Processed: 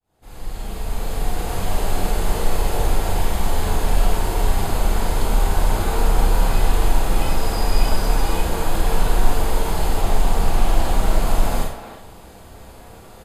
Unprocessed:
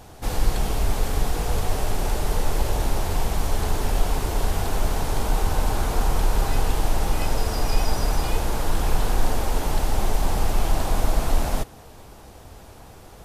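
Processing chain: fade-in on the opening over 1.83 s; band-stop 5.7 kHz, Q 6; speakerphone echo 310 ms, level -10 dB; Schroeder reverb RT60 0.45 s, combs from 33 ms, DRR -2 dB; 10.01–11.22 s: loudspeaker Doppler distortion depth 0.17 ms; trim -1 dB

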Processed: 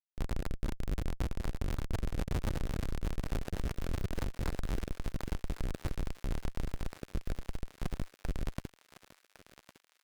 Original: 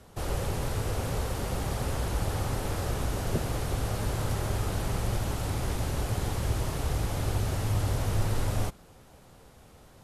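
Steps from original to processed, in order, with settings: peaking EQ 860 Hz +5.5 dB 2.4 oct; comb 3.3 ms, depth 36%; saturation -27 dBFS, distortion -11 dB; four-pole ladder low-pass 1.7 kHz, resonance 80%; Schmitt trigger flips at -34.5 dBFS; rotary cabinet horn 8 Hz; on a send: thinning echo 1107 ms, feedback 60%, high-pass 960 Hz, level -9 dB; on the sum: trim +13 dB

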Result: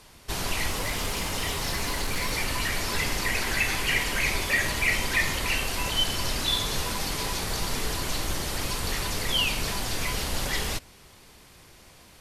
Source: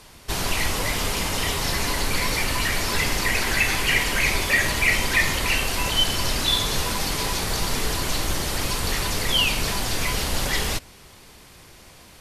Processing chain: 0.71–2.32 s: overload inside the chain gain 18 dB; trim -4.5 dB

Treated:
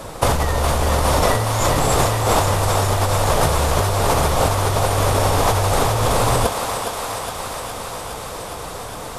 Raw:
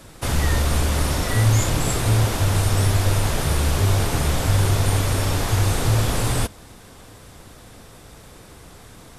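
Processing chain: high-order bell 730 Hz +8.5 dB; compressor with a negative ratio -22 dBFS, ratio -1; on a send: thinning echo 413 ms, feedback 78%, high-pass 450 Hz, level -5 dB; on the sum: trim +4 dB

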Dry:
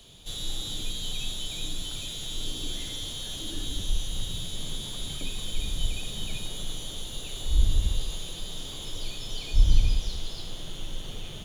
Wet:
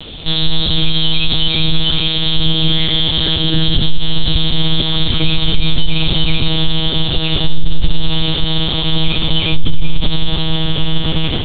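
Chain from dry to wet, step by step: monotone LPC vocoder at 8 kHz 160 Hz; loudness maximiser +23 dB; trim -1 dB

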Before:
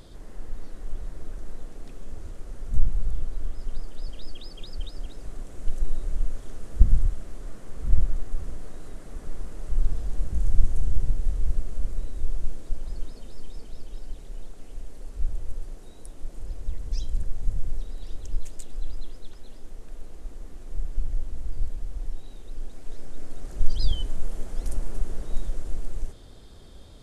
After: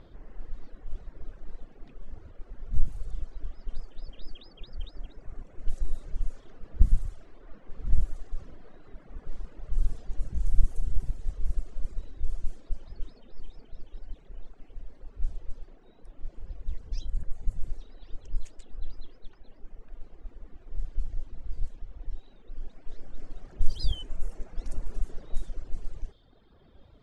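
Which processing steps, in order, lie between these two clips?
de-hum 45.98 Hz, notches 13; level-controlled noise filter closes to 2.3 kHz, open at -11.5 dBFS; reverb removal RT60 1.7 s; trim -2.5 dB

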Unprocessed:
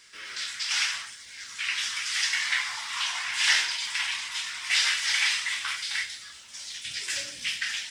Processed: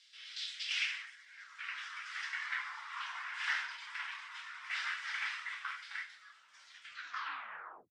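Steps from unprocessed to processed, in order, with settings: tape stop on the ending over 1.12 s; band-pass sweep 3.6 kHz -> 1.3 kHz, 0.48–1.50 s; trim -4 dB

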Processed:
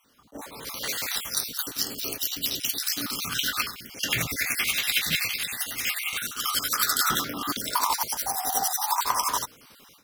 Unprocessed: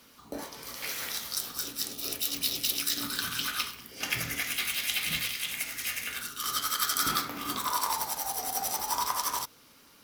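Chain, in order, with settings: random holes in the spectrogram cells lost 39%; level rider gain up to 13.5 dB; attacks held to a fixed rise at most 470 dB/s; trim -5.5 dB

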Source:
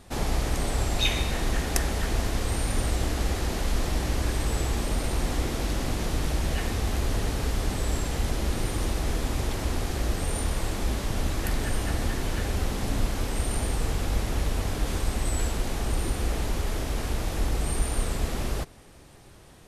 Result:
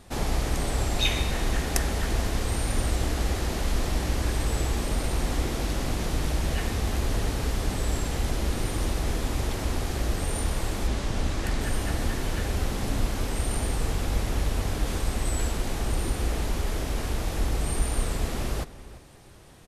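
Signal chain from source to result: 10.87–11.61 s: low-pass 8.9 kHz 12 dB/octave; echo from a far wall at 59 m, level -16 dB

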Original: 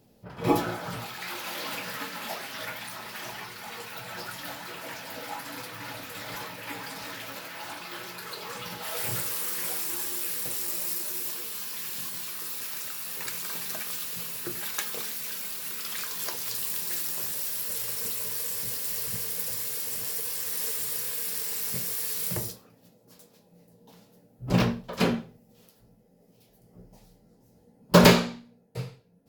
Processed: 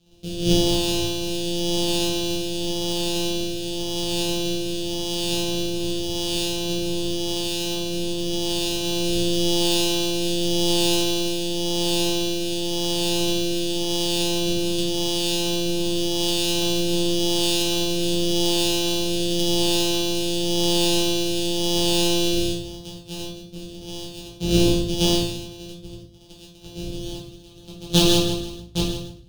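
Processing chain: sorted samples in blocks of 256 samples; gate -56 dBFS, range -45 dB; level rider gain up to 4.5 dB; resonant high shelf 2.5 kHz +11.5 dB, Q 3; power-law waveshaper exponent 0.5; rotary cabinet horn 0.9 Hz, later 6.3 Hz, at 26.82 s; simulated room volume 45 m³, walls mixed, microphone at 1 m; trim -17.5 dB

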